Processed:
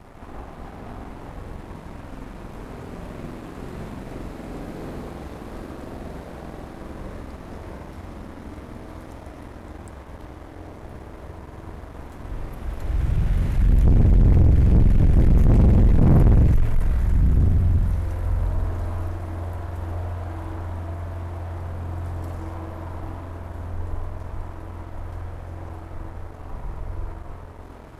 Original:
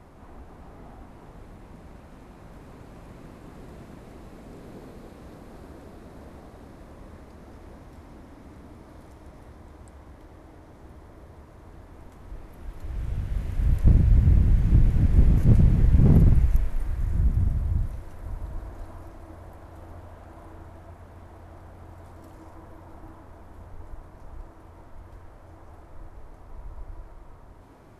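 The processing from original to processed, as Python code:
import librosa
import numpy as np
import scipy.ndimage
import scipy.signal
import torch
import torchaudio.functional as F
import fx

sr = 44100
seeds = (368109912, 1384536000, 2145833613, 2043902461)

y = fx.rev_spring(x, sr, rt60_s=1.2, pass_ms=(46,), chirp_ms=25, drr_db=1.5)
y = 10.0 ** (-10.5 / 20.0) * np.tanh(y / 10.0 ** (-10.5 / 20.0))
y = fx.leveller(y, sr, passes=2)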